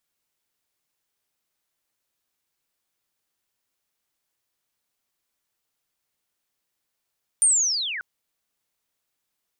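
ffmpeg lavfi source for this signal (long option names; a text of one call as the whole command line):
ffmpeg -f lavfi -i "aevalsrc='pow(10,(-13.5-15.5*t/0.59)/20)*sin(2*PI*(9200*t-7800*t*t/(2*0.59)))':duration=0.59:sample_rate=44100" out.wav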